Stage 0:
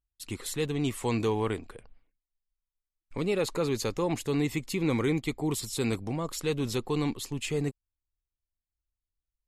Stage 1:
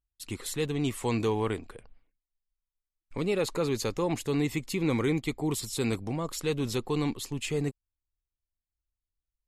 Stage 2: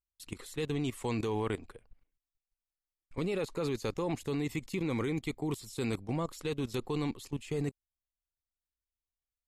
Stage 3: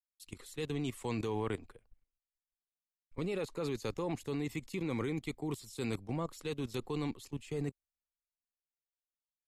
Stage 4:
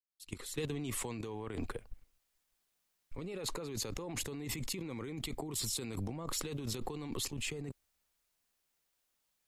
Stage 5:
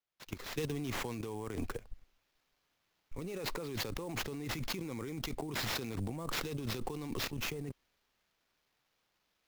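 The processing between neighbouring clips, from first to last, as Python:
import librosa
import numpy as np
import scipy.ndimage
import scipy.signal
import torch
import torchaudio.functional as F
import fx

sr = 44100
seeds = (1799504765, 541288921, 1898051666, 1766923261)

y1 = x
y2 = fx.level_steps(y1, sr, step_db=16)
y3 = fx.band_widen(y2, sr, depth_pct=40)
y3 = y3 * 10.0 ** (-3.0 / 20.0)
y4 = fx.fade_in_head(y3, sr, length_s=1.2)
y4 = fx.over_compress(y4, sr, threshold_db=-46.0, ratio=-1.0)
y4 = 10.0 ** (-29.5 / 20.0) * np.tanh(y4 / 10.0 ** (-29.5 / 20.0))
y4 = y4 * 10.0 ** (7.0 / 20.0)
y5 = fx.sample_hold(y4, sr, seeds[0], rate_hz=9000.0, jitter_pct=20)
y5 = y5 * 10.0 ** (1.0 / 20.0)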